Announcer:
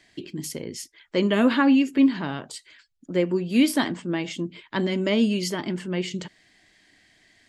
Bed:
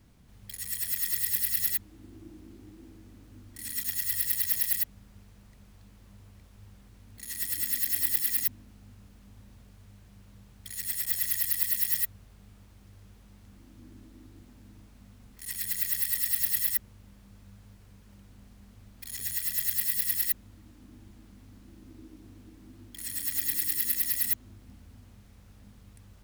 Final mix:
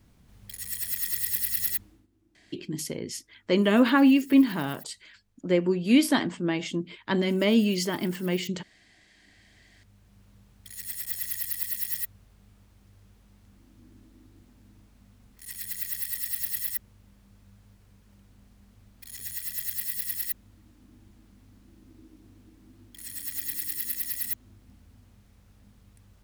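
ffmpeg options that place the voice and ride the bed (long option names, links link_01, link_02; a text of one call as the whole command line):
ffmpeg -i stem1.wav -i stem2.wav -filter_complex "[0:a]adelay=2350,volume=-0.5dB[link_01];[1:a]volume=16.5dB,afade=type=out:start_time=1.79:duration=0.28:silence=0.1,afade=type=in:start_time=9.06:duration=1.16:silence=0.149624[link_02];[link_01][link_02]amix=inputs=2:normalize=0" out.wav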